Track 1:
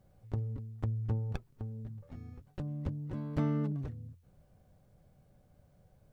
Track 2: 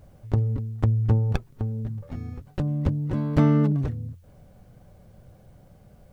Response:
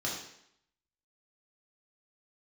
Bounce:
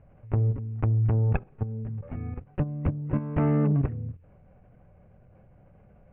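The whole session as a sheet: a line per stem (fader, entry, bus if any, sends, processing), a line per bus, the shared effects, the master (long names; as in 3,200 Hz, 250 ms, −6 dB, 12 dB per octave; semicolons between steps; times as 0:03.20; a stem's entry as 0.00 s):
−3.0 dB, 0.00 s, send −13 dB, parametric band 450 Hz +12 dB 2.4 octaves
+3.0 dB, 0.00 s, no send, parametric band 270 Hz −2 dB 0.59 octaves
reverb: on, RT60 0.70 s, pre-delay 3 ms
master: soft clipping −11 dBFS, distortion −16 dB; elliptic low-pass filter 2,600 Hz, stop band 50 dB; output level in coarse steps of 11 dB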